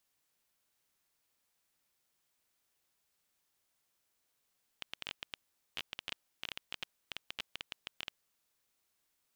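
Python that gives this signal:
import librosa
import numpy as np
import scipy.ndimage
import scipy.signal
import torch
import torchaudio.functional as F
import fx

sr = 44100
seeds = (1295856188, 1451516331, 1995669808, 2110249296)

y = fx.geiger_clicks(sr, seeds[0], length_s=3.32, per_s=12.0, level_db=-21.5)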